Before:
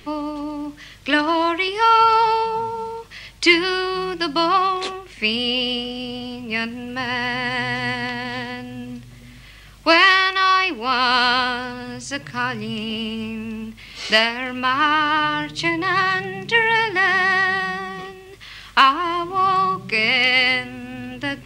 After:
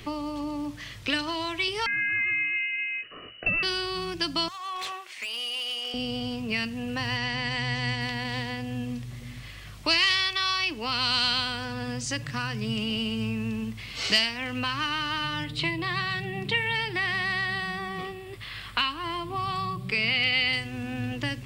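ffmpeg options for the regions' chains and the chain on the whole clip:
-filter_complex "[0:a]asettb=1/sr,asplit=3[s0][s1][s2];[s0]atrim=end=1.864[s3];[s1]atrim=start=1.86:end=3.63,asetpts=PTS-STARTPTS,afade=t=in:d=0.004:c=qsin,afade=t=out:st=1.766:d=0.004:c=qsin,lowpass=f=2600:t=q:w=0.5098,lowpass=f=2600:t=q:w=0.6013,lowpass=f=2600:t=q:w=0.9,lowpass=f=2600:t=q:w=2.563,afreqshift=-3000,acompressor=threshold=0.141:ratio=2:attack=3.2:release=140:knee=1:detection=peak,asuperstop=centerf=890:order=4:qfactor=1.6[s4];[s2]atrim=start=3.626[s5];[s3][s4]acrossfade=d=0.004:c1=hsin:c2=qsin[s6];[s6][s5]acrossfade=d=0.004:c1=qsin:c2=hsin,asettb=1/sr,asplit=3[s7][s8][s9];[s7]atrim=end=4.484[s10];[s8]atrim=start=4.48:end=5.94,asetpts=PTS-STARTPTS,afade=t=in:d=0.004:c=qsin,afade=t=out:st=1.456:d=0.004:c=qsin,highpass=880,acompressor=threshold=0.0447:ratio=8:attack=3.2:release=140:knee=1:detection=peak,volume=25.1,asoftclip=hard,volume=0.0398[s11];[s9]atrim=start=5.936[s12];[s10][s11]acrossfade=d=0.004:c1=hsin:c2=qsin[s13];[s13][s12]acrossfade=d=0.004:c1=qsin:c2=hsin,asettb=1/sr,asplit=3[s14][s15][s16];[s14]atrim=end=7.174[s17];[s15]atrim=start=7.17:end=8.01,asetpts=PTS-STARTPTS,afade=t=in:d=0.004:c=qsin,afade=t=out:st=0.836:d=0.004:c=qsin,lowpass=f=8000:w=0.5412,lowpass=f=8000:w=1.3066,aeval=exprs='val(0)+0.00398*sin(2*PI*930*n/s)':c=same[s18];[s16]atrim=start=8.006[s19];[s17][s18]acrossfade=d=0.004:c1=hsin:c2=qsin[s20];[s20][s19]acrossfade=d=0.004:c1=qsin:c2=hsin,asettb=1/sr,asplit=3[s21][s22][s23];[s21]atrim=end=15.444[s24];[s22]atrim=start=15.44:end=20.53,asetpts=PTS-STARTPTS,afade=t=in:d=0.004:c=qsin,afade=t=out:st=5.086:d=0.004:c=qsin,equalizer=f=6200:t=o:w=0.39:g=-11.5,acrossover=split=4500[s25][s26];[s26]acompressor=threshold=0.0112:ratio=4:attack=1:release=60[s27];[s25][s27]amix=inputs=2:normalize=0[s28];[s23]atrim=start=20.526[s29];[s24][s28]acrossfade=d=0.004:c1=hsin:c2=qsin[s30];[s30][s29]acrossfade=d=0.004:c1=qsin:c2=hsin,equalizer=f=110:t=o:w=0.25:g=11,acrossover=split=170|3000[s31][s32][s33];[s32]acompressor=threshold=0.0282:ratio=6[s34];[s31][s34][s33]amix=inputs=3:normalize=0"

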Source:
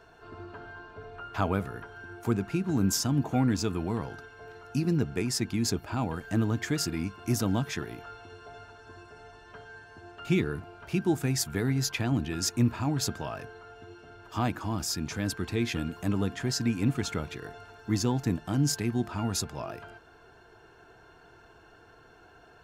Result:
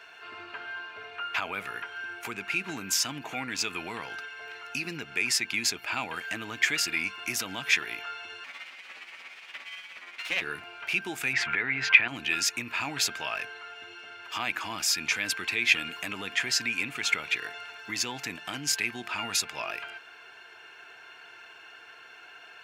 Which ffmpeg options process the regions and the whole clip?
-filter_complex "[0:a]asettb=1/sr,asplit=3[s0][s1][s2];[s0]atrim=end=8.444[s3];[s1]atrim=start=8.44:end=10.42,asetpts=PTS-STARTPTS,afade=t=in:d=0.004:c=qsin,afade=t=out:st=1.976:d=0.004:c=qsin,aeval=exprs='abs(val(0))':c=same,tremolo=f=17:d=0.47[s4];[s2]atrim=start=10.416[s5];[s3][s4]acrossfade=d=0.004:c1=hsin:c2=qsin[s6];[s6][s5]acrossfade=d=0.004:c1=qsin:c2=hsin,asettb=1/sr,asplit=3[s7][s8][s9];[s7]atrim=end=11.334[s10];[s8]atrim=start=11.33:end=12.08,asetpts=PTS-STARTPTS,afade=t=in:d=0.004:c=qsin,afade=t=out:st=0.746:d=0.004:c=qsin,acontrast=70,lowpass=f=2100:t=q:w=1.5[s11];[s9]atrim=start=12.076[s12];[s10][s11]acrossfade=d=0.004:c1=hsin:c2=qsin[s13];[s13][s12]acrossfade=d=0.004:c1=qsin:c2=hsin,alimiter=limit=0.0794:level=0:latency=1:release=117,highpass=f=1400:p=1,equalizer=f=2400:t=o:w=1:g=14.5,volume=1.88"

